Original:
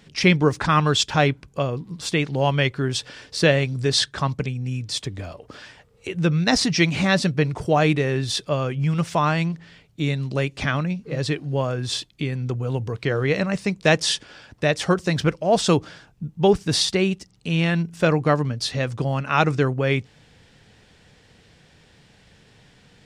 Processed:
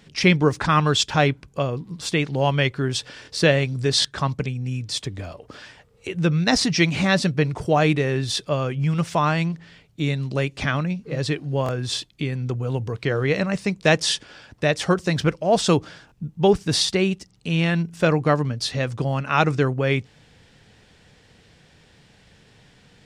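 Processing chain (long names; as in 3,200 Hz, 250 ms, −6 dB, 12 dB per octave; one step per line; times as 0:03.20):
buffer that repeats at 0:03.23/0:04.00/0:11.64/0:16.07, samples 1,024, times 1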